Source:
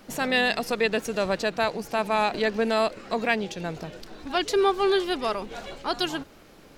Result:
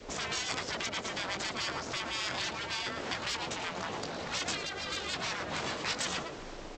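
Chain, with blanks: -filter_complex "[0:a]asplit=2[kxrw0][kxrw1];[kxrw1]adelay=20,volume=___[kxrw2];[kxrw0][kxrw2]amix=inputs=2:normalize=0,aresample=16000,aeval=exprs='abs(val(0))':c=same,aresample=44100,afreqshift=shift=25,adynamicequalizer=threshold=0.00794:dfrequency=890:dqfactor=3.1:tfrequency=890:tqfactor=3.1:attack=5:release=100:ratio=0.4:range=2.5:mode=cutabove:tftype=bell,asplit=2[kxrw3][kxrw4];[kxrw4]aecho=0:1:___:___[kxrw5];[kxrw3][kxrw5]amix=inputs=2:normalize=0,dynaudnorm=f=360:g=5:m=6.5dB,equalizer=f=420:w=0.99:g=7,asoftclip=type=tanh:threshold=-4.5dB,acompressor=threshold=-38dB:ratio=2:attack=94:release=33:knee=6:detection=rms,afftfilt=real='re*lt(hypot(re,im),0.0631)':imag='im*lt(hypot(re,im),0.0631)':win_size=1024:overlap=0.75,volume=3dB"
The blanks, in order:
-8.5dB, 111, 0.2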